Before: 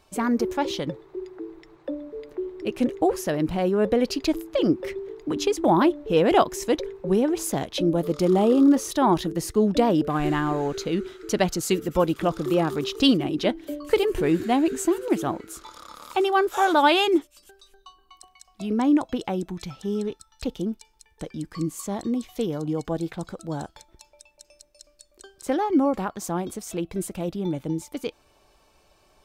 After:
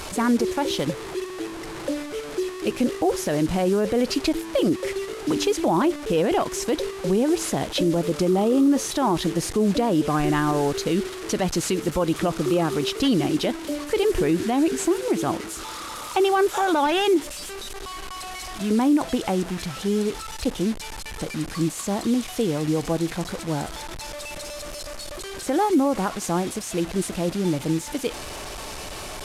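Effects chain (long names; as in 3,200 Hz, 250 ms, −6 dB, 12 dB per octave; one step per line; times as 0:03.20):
linear delta modulator 64 kbit/s, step −32.5 dBFS
brickwall limiter −16.5 dBFS, peak gain reduction 10.5 dB
level +4 dB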